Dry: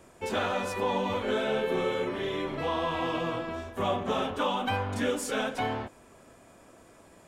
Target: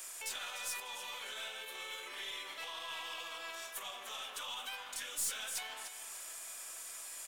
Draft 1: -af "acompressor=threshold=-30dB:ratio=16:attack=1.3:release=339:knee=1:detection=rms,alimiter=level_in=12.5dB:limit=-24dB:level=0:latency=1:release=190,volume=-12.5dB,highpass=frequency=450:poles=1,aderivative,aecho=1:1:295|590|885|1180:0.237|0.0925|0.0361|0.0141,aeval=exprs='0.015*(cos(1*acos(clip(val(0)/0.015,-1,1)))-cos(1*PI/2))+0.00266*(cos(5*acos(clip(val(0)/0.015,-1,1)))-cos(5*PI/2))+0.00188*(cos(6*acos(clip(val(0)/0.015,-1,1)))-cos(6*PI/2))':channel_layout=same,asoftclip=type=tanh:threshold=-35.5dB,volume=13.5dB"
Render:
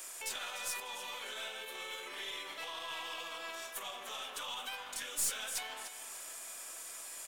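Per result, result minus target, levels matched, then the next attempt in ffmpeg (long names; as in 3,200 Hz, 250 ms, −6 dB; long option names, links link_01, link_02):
soft clipping: distortion −12 dB; 500 Hz band +2.5 dB
-af "acompressor=threshold=-30dB:ratio=16:attack=1.3:release=339:knee=1:detection=rms,alimiter=level_in=12.5dB:limit=-24dB:level=0:latency=1:release=190,volume=-12.5dB,highpass=frequency=450:poles=1,aderivative,aecho=1:1:295|590|885|1180:0.237|0.0925|0.0361|0.0141,aeval=exprs='0.015*(cos(1*acos(clip(val(0)/0.015,-1,1)))-cos(1*PI/2))+0.00266*(cos(5*acos(clip(val(0)/0.015,-1,1)))-cos(5*PI/2))+0.00188*(cos(6*acos(clip(val(0)/0.015,-1,1)))-cos(6*PI/2))':channel_layout=same,asoftclip=type=tanh:threshold=-44dB,volume=13.5dB"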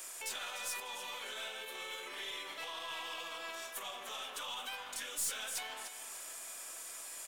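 500 Hz band +3.0 dB
-af "acompressor=threshold=-30dB:ratio=16:attack=1.3:release=339:knee=1:detection=rms,alimiter=level_in=12.5dB:limit=-24dB:level=0:latency=1:release=190,volume=-12.5dB,highpass=frequency=910:poles=1,aderivative,aecho=1:1:295|590|885|1180:0.237|0.0925|0.0361|0.0141,aeval=exprs='0.015*(cos(1*acos(clip(val(0)/0.015,-1,1)))-cos(1*PI/2))+0.00266*(cos(5*acos(clip(val(0)/0.015,-1,1)))-cos(5*PI/2))+0.00188*(cos(6*acos(clip(val(0)/0.015,-1,1)))-cos(6*PI/2))':channel_layout=same,asoftclip=type=tanh:threshold=-44dB,volume=13.5dB"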